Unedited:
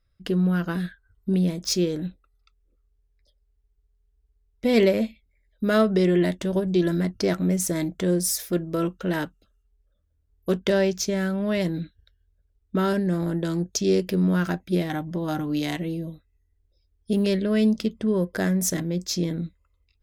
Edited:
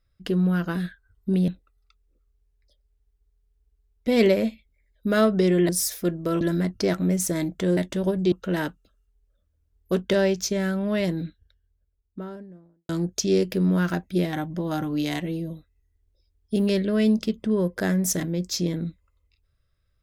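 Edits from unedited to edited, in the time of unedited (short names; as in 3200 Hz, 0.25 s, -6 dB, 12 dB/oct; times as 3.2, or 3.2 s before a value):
1.48–2.05 cut
6.26–6.81 swap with 8.17–8.89
11.51–13.46 studio fade out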